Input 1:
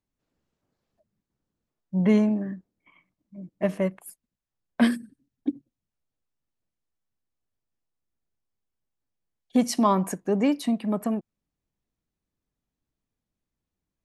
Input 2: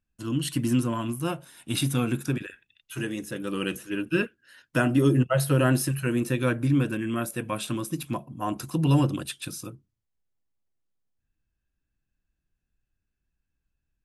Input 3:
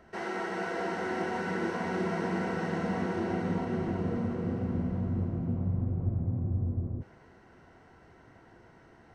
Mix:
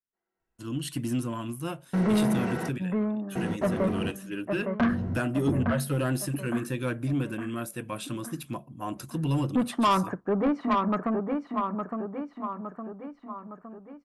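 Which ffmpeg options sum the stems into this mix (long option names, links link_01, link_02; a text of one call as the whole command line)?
ffmpeg -i stem1.wav -i stem2.wav -i stem3.wav -filter_complex "[0:a]agate=range=-21dB:threshold=-46dB:ratio=16:detection=peak,lowpass=frequency=1300:width_type=q:width=4.4,volume=-1dB,asplit=3[link_01][link_02][link_03];[link_02]volume=-6.5dB[link_04];[1:a]adelay=400,volume=-4.5dB[link_05];[2:a]volume=0.5dB[link_06];[link_03]apad=whole_len=403409[link_07];[link_06][link_07]sidechaingate=range=-54dB:threshold=-51dB:ratio=16:detection=peak[link_08];[link_04]aecho=0:1:862|1724|2586|3448|4310|5172|6034:1|0.51|0.26|0.133|0.0677|0.0345|0.0176[link_09];[link_01][link_05][link_08][link_09]amix=inputs=4:normalize=0,asoftclip=type=tanh:threshold=-18dB" out.wav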